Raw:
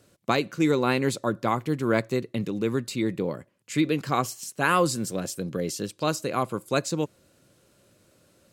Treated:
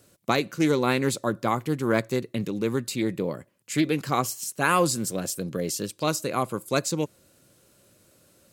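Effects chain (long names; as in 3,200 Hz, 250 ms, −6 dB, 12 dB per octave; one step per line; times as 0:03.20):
high-shelf EQ 8,400 Hz +10 dB
highs frequency-modulated by the lows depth 0.11 ms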